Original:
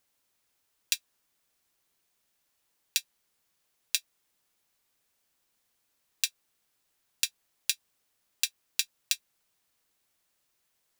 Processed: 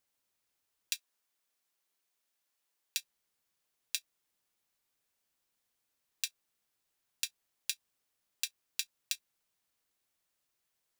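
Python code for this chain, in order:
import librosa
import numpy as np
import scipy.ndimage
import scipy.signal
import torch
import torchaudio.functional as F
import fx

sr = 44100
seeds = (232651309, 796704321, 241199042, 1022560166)

p1 = fx.highpass(x, sr, hz=370.0, slope=6, at=(0.95, 2.97))
p2 = fx.level_steps(p1, sr, step_db=23)
p3 = p1 + F.gain(torch.from_numpy(p2), 1.0).numpy()
y = F.gain(torch.from_numpy(p3), -8.0).numpy()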